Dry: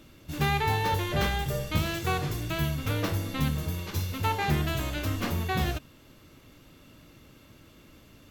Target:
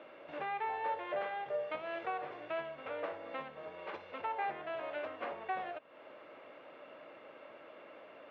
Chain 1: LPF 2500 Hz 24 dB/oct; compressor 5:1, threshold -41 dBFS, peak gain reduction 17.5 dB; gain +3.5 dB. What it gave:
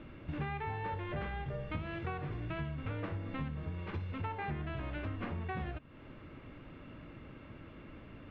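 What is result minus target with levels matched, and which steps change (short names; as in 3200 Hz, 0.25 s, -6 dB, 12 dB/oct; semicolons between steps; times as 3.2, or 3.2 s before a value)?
500 Hz band -5.5 dB
add after compressor: resonant high-pass 590 Hz, resonance Q 2.7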